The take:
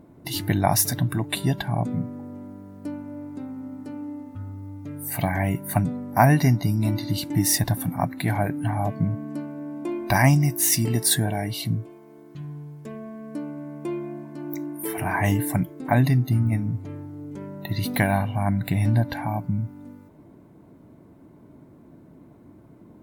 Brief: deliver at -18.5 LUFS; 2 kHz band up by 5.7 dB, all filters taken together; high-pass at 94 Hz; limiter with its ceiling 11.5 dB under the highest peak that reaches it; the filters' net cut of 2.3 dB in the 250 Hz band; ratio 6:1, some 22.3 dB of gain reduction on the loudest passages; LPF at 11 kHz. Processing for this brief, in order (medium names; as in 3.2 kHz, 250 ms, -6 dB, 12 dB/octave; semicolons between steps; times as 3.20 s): high-pass 94 Hz; low-pass 11 kHz; peaking EQ 250 Hz -3 dB; peaking EQ 2 kHz +7 dB; compression 6:1, threshold -37 dBFS; trim +22.5 dB; peak limiter -6.5 dBFS